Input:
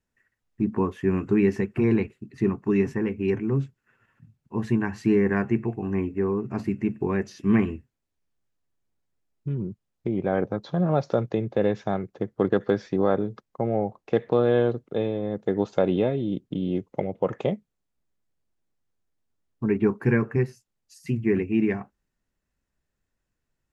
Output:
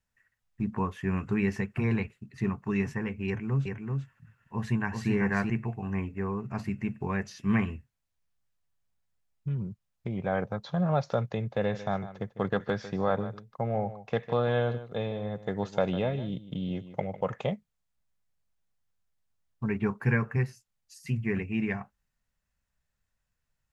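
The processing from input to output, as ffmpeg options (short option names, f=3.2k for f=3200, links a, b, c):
-filter_complex "[0:a]asettb=1/sr,asplit=3[a][b][c];[a]atrim=end=3.274[d];[b]atrim=start=3.27:end=5.5,asetpts=PTS-STARTPTS,afade=t=in:d=0.004:c=qsin,afade=t=out:st=2.226:d=0.004:c=qsin,aecho=1:1:384:0.631,atrim=end_sample=98343[e];[c]atrim=start=5.496[f];[d][e]acrossfade=d=0.004:c1=hsin:c2=qsin[g];[g][f]acrossfade=d=0.004:c1=qsin:c2=hsin,asettb=1/sr,asplit=3[h][i][j];[h]atrim=end=11.584[k];[i]atrim=start=11.58:end=17.21,asetpts=PTS-STARTPTS,afade=t=in:d=0.004:c=qsin,afade=t=out:st=5.626:d=0.004:c=qsin,aecho=1:1:151:0.2,atrim=end_sample=248283[l];[j]atrim=start=17.206[m];[k][l]acrossfade=d=0.004:c1=hsin:c2=qsin[n];[n][m]acrossfade=d=0.004:c1=qsin:c2=hsin,equalizer=f=330:t=o:w=0.96:g=-14.5"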